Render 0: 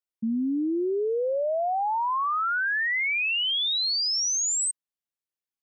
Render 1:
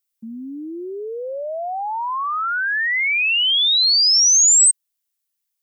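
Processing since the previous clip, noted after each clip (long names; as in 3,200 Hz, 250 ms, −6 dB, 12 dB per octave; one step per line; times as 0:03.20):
spectral tilt +4 dB per octave
level +2 dB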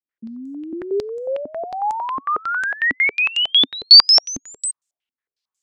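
low-pass on a step sequencer 11 Hz 270–7,300 Hz
level −1 dB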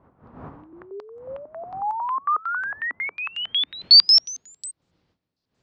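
wind on the microphone 120 Hz −26 dBFS
band-pass filter sweep 1,100 Hz → 4,600 Hz, 0:03.14–0:04.15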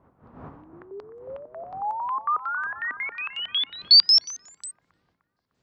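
bucket-brigade delay 302 ms, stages 4,096, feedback 51%, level −12.5 dB
level −2.5 dB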